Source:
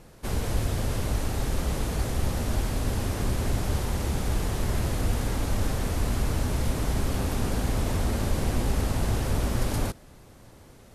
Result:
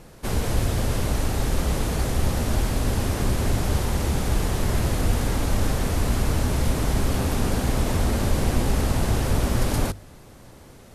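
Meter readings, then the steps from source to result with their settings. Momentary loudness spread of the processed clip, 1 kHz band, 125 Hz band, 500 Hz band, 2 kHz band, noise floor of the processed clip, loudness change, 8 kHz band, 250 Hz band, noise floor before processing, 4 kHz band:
2 LU, +4.5 dB, +4.0 dB, +4.5 dB, +4.5 dB, -47 dBFS, +4.0 dB, +4.5 dB, +4.5 dB, -51 dBFS, +4.5 dB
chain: hum notches 50/100 Hz; trim +4.5 dB

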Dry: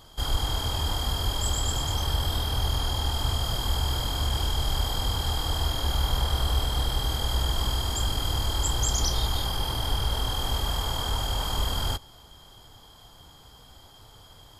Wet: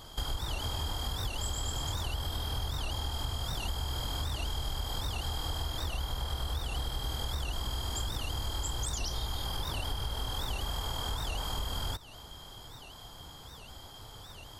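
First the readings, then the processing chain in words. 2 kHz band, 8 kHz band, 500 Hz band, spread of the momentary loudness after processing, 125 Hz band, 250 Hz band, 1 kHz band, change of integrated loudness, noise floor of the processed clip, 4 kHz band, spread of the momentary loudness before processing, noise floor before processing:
-5.5 dB, -8.0 dB, -7.5 dB, 13 LU, -8.0 dB, -7.5 dB, -7.5 dB, -8.0 dB, -49 dBFS, -8.0 dB, 2 LU, -51 dBFS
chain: compression, threshold -34 dBFS, peak gain reduction 14 dB; warped record 78 rpm, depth 250 cents; trim +2.5 dB

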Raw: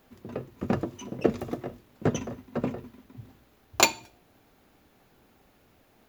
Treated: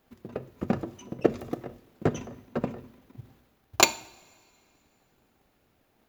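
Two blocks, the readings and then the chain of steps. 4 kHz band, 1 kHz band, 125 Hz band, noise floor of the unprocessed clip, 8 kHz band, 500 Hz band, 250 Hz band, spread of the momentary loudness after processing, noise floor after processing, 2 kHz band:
+1.0 dB, 0.0 dB, -1.5 dB, -63 dBFS, +1.0 dB, 0.0 dB, -0.5 dB, 18 LU, -69 dBFS, 0.0 dB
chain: transient shaper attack +9 dB, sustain +5 dB; two-slope reverb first 0.6 s, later 2.6 s, from -17 dB, DRR 16 dB; trim -7.5 dB

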